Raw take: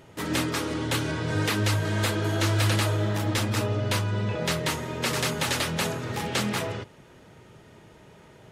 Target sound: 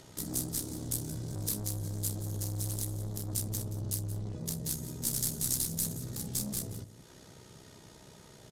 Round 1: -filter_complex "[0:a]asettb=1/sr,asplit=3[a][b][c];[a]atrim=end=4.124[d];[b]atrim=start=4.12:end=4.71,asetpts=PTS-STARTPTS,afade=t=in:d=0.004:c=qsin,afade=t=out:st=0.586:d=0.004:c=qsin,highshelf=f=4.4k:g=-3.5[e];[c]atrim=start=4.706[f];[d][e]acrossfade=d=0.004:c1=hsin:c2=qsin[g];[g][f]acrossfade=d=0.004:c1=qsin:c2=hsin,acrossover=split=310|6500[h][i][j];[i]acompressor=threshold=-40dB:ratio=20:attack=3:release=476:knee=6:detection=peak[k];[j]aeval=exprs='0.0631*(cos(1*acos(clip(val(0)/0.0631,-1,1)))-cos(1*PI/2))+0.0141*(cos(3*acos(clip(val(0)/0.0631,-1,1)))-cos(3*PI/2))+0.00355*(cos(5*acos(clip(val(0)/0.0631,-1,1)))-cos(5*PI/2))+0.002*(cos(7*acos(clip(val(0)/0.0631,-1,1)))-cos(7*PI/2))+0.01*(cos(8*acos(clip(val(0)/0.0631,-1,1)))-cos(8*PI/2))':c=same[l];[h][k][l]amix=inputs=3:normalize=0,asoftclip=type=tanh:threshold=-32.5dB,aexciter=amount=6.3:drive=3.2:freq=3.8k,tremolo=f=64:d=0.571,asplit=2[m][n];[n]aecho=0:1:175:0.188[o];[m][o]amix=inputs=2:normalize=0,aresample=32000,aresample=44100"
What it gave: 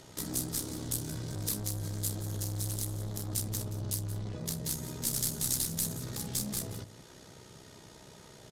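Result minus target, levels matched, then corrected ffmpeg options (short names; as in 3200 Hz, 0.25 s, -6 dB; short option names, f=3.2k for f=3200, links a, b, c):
compressor: peak gain reduction -8.5 dB
-filter_complex "[0:a]asettb=1/sr,asplit=3[a][b][c];[a]atrim=end=4.124[d];[b]atrim=start=4.12:end=4.71,asetpts=PTS-STARTPTS,afade=t=in:d=0.004:c=qsin,afade=t=out:st=0.586:d=0.004:c=qsin,highshelf=f=4.4k:g=-3.5[e];[c]atrim=start=4.706[f];[d][e]acrossfade=d=0.004:c1=hsin:c2=qsin[g];[g][f]acrossfade=d=0.004:c1=qsin:c2=hsin,acrossover=split=310|6500[h][i][j];[i]acompressor=threshold=-49dB:ratio=20:attack=3:release=476:knee=6:detection=peak[k];[j]aeval=exprs='0.0631*(cos(1*acos(clip(val(0)/0.0631,-1,1)))-cos(1*PI/2))+0.0141*(cos(3*acos(clip(val(0)/0.0631,-1,1)))-cos(3*PI/2))+0.00355*(cos(5*acos(clip(val(0)/0.0631,-1,1)))-cos(5*PI/2))+0.002*(cos(7*acos(clip(val(0)/0.0631,-1,1)))-cos(7*PI/2))+0.01*(cos(8*acos(clip(val(0)/0.0631,-1,1)))-cos(8*PI/2))':c=same[l];[h][k][l]amix=inputs=3:normalize=0,asoftclip=type=tanh:threshold=-32.5dB,aexciter=amount=6.3:drive=3.2:freq=3.8k,tremolo=f=64:d=0.571,asplit=2[m][n];[n]aecho=0:1:175:0.188[o];[m][o]amix=inputs=2:normalize=0,aresample=32000,aresample=44100"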